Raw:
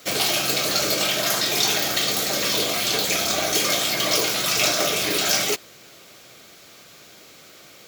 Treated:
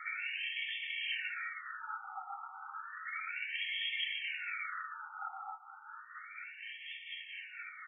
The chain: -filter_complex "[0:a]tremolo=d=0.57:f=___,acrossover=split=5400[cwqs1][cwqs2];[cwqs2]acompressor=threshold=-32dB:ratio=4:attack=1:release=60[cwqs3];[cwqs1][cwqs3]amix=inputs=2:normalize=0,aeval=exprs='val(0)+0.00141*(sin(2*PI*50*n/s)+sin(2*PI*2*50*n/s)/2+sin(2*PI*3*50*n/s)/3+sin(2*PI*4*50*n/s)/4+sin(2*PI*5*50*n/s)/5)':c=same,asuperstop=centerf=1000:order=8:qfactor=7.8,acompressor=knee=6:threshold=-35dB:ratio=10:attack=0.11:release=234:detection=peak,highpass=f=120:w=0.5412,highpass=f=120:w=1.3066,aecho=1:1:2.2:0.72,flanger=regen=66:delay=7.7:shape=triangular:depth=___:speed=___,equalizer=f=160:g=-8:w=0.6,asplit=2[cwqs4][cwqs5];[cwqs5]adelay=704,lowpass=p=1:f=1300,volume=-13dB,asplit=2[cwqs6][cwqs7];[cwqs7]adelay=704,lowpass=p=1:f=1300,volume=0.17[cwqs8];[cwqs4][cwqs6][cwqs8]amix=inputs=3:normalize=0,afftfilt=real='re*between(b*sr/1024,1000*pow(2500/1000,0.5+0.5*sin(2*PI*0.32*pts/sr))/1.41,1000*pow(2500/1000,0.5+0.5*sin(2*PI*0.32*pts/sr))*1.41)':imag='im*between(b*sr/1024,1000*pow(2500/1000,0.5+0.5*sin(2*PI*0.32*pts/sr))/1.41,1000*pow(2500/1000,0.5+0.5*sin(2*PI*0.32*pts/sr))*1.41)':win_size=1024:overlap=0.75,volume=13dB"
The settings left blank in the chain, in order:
4.2, 6.9, 0.46